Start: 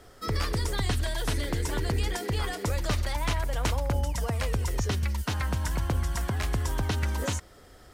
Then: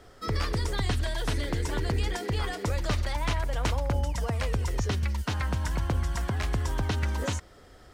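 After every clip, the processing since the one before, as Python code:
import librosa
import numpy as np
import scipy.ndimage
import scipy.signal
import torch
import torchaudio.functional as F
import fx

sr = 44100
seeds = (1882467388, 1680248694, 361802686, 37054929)

y = fx.peak_eq(x, sr, hz=13000.0, db=-8.0, octaves=1.1)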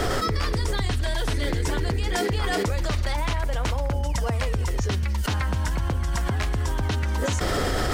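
y = fx.env_flatten(x, sr, amount_pct=100)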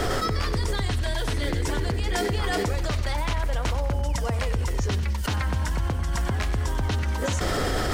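y = fx.echo_feedback(x, sr, ms=94, feedback_pct=43, wet_db=-13.5)
y = y * librosa.db_to_amplitude(-1.0)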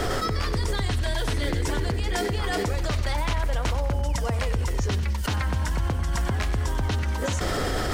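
y = fx.rider(x, sr, range_db=10, speed_s=0.5)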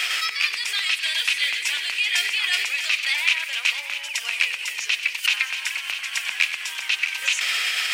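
y = fx.highpass_res(x, sr, hz=2500.0, q=6.5)
y = y + 10.0 ** (-10.5 / 20.0) * np.pad(y, (int(649 * sr / 1000.0), 0))[:len(y)]
y = y * librosa.db_to_amplitude(5.5)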